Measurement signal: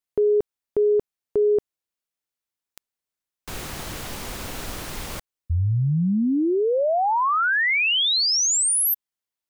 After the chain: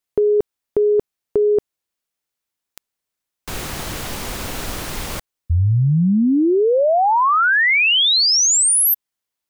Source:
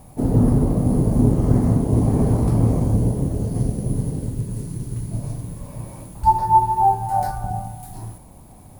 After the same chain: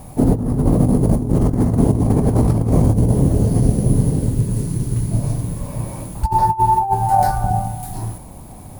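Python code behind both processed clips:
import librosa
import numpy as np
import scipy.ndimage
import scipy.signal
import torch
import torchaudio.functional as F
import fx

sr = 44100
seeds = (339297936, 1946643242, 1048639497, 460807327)

y = fx.over_compress(x, sr, threshold_db=-19.0, ratio=-0.5)
y = y * librosa.db_to_amplitude(5.5)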